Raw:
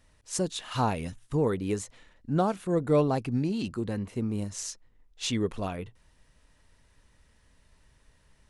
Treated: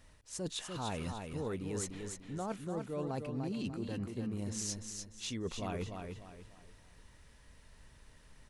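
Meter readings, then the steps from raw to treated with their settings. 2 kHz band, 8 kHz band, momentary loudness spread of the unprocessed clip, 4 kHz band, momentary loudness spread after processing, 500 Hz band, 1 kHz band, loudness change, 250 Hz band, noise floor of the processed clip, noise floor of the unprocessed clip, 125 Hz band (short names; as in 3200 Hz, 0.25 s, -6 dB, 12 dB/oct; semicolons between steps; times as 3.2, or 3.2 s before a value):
-7.0 dB, -3.5 dB, 12 LU, -6.0 dB, 7 LU, -11.0 dB, -11.0 dB, -10.0 dB, -9.5 dB, -61 dBFS, -64 dBFS, -9.5 dB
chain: reverse; compressor 10:1, threshold -38 dBFS, peak gain reduction 19.5 dB; reverse; feedback echo 0.296 s, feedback 35%, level -5.5 dB; gain +2 dB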